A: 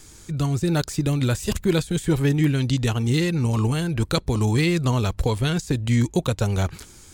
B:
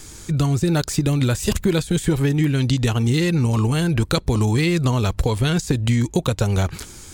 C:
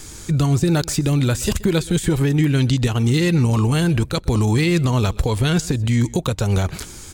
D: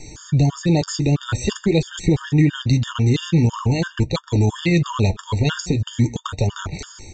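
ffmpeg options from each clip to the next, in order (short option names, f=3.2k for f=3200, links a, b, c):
-af "acompressor=threshold=-22dB:ratio=6,volume=7dB"
-af "alimiter=limit=-11dB:level=0:latency=1:release=105,aecho=1:1:127:0.0841,volume=2.5dB"
-af "flanger=delay=6.6:depth=4.9:regen=-57:speed=0.45:shape=sinusoidal,aresample=16000,aresample=44100,afftfilt=real='re*gt(sin(2*PI*3*pts/sr)*(1-2*mod(floor(b*sr/1024/920),2)),0)':imag='im*gt(sin(2*PI*3*pts/sr)*(1-2*mod(floor(b*sr/1024/920),2)),0)':win_size=1024:overlap=0.75,volume=6dB"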